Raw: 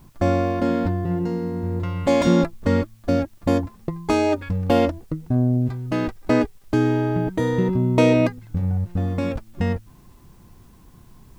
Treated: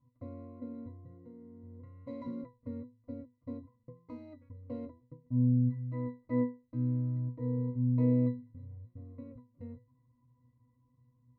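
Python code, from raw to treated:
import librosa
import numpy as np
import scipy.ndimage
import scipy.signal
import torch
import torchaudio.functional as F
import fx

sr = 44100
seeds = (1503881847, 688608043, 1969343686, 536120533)

y = fx.wiener(x, sr, points=9)
y = fx.octave_resonator(y, sr, note='B', decay_s=0.28)
y = y * librosa.db_to_amplitude(-6.5)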